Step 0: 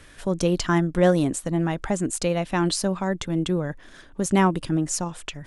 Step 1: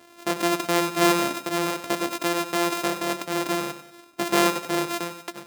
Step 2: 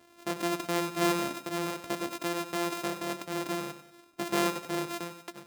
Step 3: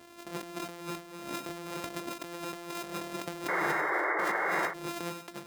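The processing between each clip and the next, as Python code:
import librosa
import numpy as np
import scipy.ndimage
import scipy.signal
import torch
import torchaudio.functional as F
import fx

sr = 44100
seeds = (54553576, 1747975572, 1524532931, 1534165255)

y1 = np.r_[np.sort(x[:len(x) // 128 * 128].reshape(-1, 128), axis=1).ravel(), x[len(x) // 128 * 128:]]
y1 = scipy.signal.sosfilt(scipy.signal.butter(2, 290.0, 'highpass', fs=sr, output='sos'), y1)
y1 = fx.echo_feedback(y1, sr, ms=95, feedback_pct=38, wet_db=-11.0)
y2 = fx.low_shelf(y1, sr, hz=170.0, db=7.5)
y2 = y2 * 10.0 ** (-8.5 / 20.0)
y3 = fx.over_compress(y2, sr, threshold_db=-40.0, ratio=-1.0)
y3 = fx.spec_paint(y3, sr, seeds[0], shape='noise', start_s=3.48, length_s=1.26, low_hz=300.0, high_hz=2200.0, level_db=-30.0)
y3 = fx.end_taper(y3, sr, db_per_s=140.0)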